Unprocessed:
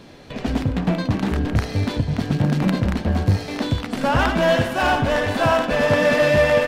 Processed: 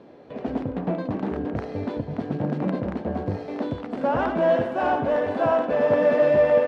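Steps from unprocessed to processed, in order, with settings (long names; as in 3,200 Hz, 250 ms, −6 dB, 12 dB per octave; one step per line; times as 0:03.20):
resonant band-pass 480 Hz, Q 0.97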